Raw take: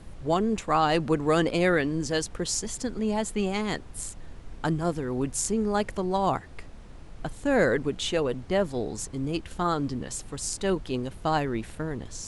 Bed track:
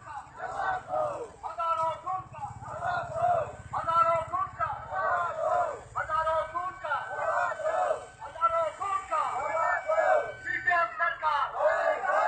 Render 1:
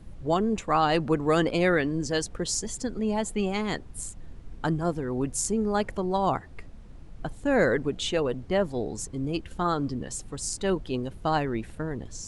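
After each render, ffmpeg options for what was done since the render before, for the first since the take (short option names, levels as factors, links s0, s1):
-af "afftdn=nr=7:nf=-45"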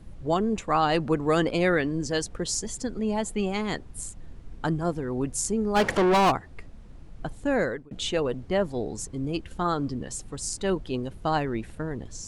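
-filter_complex "[0:a]asplit=3[s0][s1][s2];[s0]afade=t=out:st=5.75:d=0.02[s3];[s1]asplit=2[s4][s5];[s5]highpass=f=720:p=1,volume=31.6,asoftclip=type=tanh:threshold=0.211[s6];[s4][s6]amix=inputs=2:normalize=0,lowpass=f=3700:p=1,volume=0.501,afade=t=in:st=5.75:d=0.02,afade=t=out:st=6.3:d=0.02[s7];[s2]afade=t=in:st=6.3:d=0.02[s8];[s3][s7][s8]amix=inputs=3:normalize=0,asplit=2[s9][s10];[s9]atrim=end=7.91,asetpts=PTS-STARTPTS,afade=t=out:st=7.47:d=0.44[s11];[s10]atrim=start=7.91,asetpts=PTS-STARTPTS,afade=t=in:d=0.004:c=hsin[s12];[s11][s12]concat=n=2:v=0:a=1"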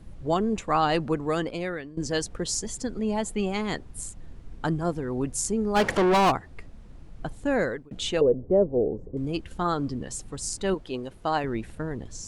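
-filter_complex "[0:a]asettb=1/sr,asplit=3[s0][s1][s2];[s0]atrim=end=8.214[s3];[s1]atrim=start=8.21:end=9.17,asetpts=PTS-STARTPTS,afade=t=in:d=0.004:c=qsin,afade=t=out:st=0.956:d=0.004:c=qsin,lowpass=f=490:t=q:w=2.9[s4];[s2]atrim=start=9.166[s5];[s3][s4]acrossfade=d=0.004:c1=hsin:c2=qsin[s6];[s6][s5]acrossfade=d=0.004:c1=qsin:c2=hsin,asettb=1/sr,asplit=3[s7][s8][s9];[s7]atrim=end=10.744[s10];[s8]atrim=start=10.74:end=11.44,asetpts=PTS-STARTPTS,afade=t=in:d=0.004:c=qsin,afade=t=out:st=0.696:d=0.004:c=qsin,bass=f=250:g=-8,treble=f=4000:g=-1[s11];[s9]atrim=start=11.436[s12];[s10][s11]acrossfade=d=0.004:c1=hsin:c2=qsin[s13];[s13][s12]acrossfade=d=0.004:c1=qsin:c2=hsin,asplit=2[s14][s15];[s14]atrim=end=1.97,asetpts=PTS-STARTPTS,afade=t=out:st=0.88:d=1.09:silence=0.133352[s16];[s15]atrim=start=1.97,asetpts=PTS-STARTPTS,afade=t=in:d=0.004:c=hsin:silence=0.133352[s17];[s16][s17]concat=n=2:v=0:a=1"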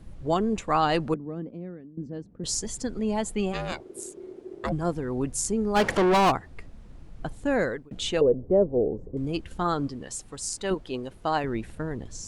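-filter_complex "[0:a]asettb=1/sr,asplit=3[s0][s1][s2];[s0]atrim=end=1.144[s3];[s1]atrim=start=1.14:end=2.44,asetpts=PTS-STARTPTS,afade=t=in:d=0.004:c=qsin,afade=t=out:st=1.296:d=0.004:c=qsin,bandpass=f=210:t=q:w=1.9[s4];[s2]atrim=start=2.436[s5];[s3][s4]acrossfade=d=0.004:c1=hsin:c2=qsin[s6];[s6][s5]acrossfade=d=0.004:c1=qsin:c2=hsin,asplit=3[s7][s8][s9];[s7]afade=t=out:st=3.52:d=0.02[s10];[s8]aeval=exprs='val(0)*sin(2*PI*370*n/s)':c=same,afade=t=in:st=3.52:d=0.02,afade=t=out:st=4.71:d=0.02[s11];[s9]afade=t=in:st=4.71:d=0.02[s12];[s10][s11][s12]amix=inputs=3:normalize=0,asettb=1/sr,asplit=3[s13][s14][s15];[s13]atrim=end=9.874[s16];[s14]atrim=start=9.87:end=10.71,asetpts=PTS-STARTPTS,afade=t=in:d=0.004:c=qsin,afade=t=out:st=0.836:d=0.004:c=qsin,lowshelf=f=320:g=-8[s17];[s15]atrim=start=10.706[s18];[s16][s17]acrossfade=d=0.004:c1=hsin:c2=qsin[s19];[s19][s18]acrossfade=d=0.004:c1=qsin:c2=hsin"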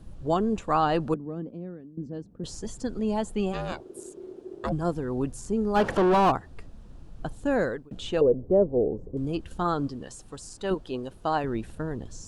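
-filter_complex "[0:a]acrossover=split=2700[s0][s1];[s1]acompressor=threshold=0.00794:ratio=4:attack=1:release=60[s2];[s0][s2]amix=inputs=2:normalize=0,equalizer=f=2100:t=o:w=0.37:g=-8.5"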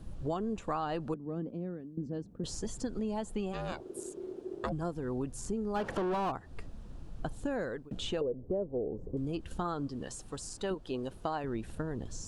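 -af "acompressor=threshold=0.0251:ratio=5"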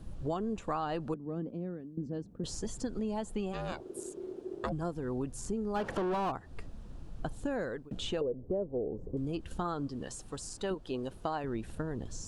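-af anull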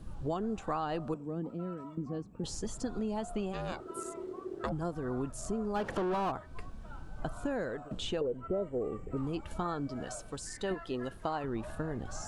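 -filter_complex "[1:a]volume=0.075[s0];[0:a][s0]amix=inputs=2:normalize=0"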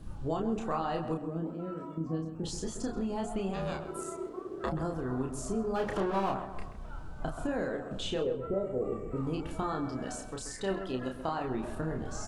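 -filter_complex "[0:a]asplit=2[s0][s1];[s1]adelay=31,volume=0.631[s2];[s0][s2]amix=inputs=2:normalize=0,asplit=2[s3][s4];[s4]adelay=131,lowpass=f=2000:p=1,volume=0.355,asplit=2[s5][s6];[s6]adelay=131,lowpass=f=2000:p=1,volume=0.49,asplit=2[s7][s8];[s8]adelay=131,lowpass=f=2000:p=1,volume=0.49,asplit=2[s9][s10];[s10]adelay=131,lowpass=f=2000:p=1,volume=0.49,asplit=2[s11][s12];[s12]adelay=131,lowpass=f=2000:p=1,volume=0.49,asplit=2[s13][s14];[s14]adelay=131,lowpass=f=2000:p=1,volume=0.49[s15];[s3][s5][s7][s9][s11][s13][s15]amix=inputs=7:normalize=0"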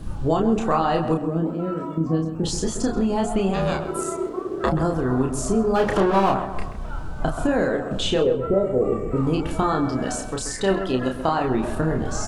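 -af "volume=3.98"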